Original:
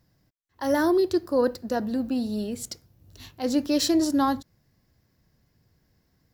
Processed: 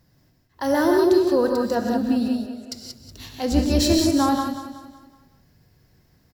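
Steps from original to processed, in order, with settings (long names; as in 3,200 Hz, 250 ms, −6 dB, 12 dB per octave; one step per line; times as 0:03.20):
0:03.51–0:03.93: sub-octave generator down 2 octaves, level +1 dB
in parallel at −2 dB: downward compressor, threshold −32 dBFS, peak gain reduction 15 dB
0:02.28–0:02.72: on the sum: pair of resonant band-passes 1,000 Hz, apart 0.94 octaves
on a send: repeating echo 186 ms, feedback 44%, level −11 dB
on the sum: reverb whose tail is shaped and stops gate 200 ms rising, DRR 1.5 dB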